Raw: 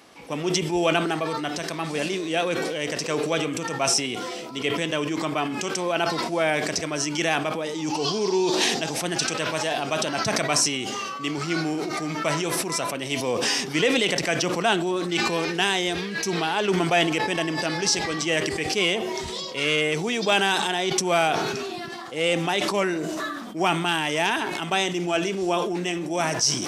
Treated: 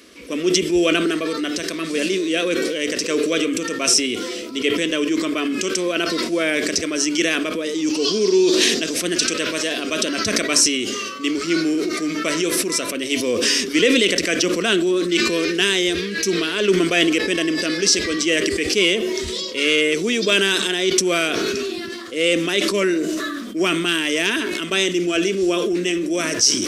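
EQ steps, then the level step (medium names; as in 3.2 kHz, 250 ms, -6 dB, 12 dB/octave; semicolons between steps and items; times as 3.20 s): peaking EQ 90 Hz +5 dB 2.6 oct; static phaser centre 340 Hz, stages 4; +6.5 dB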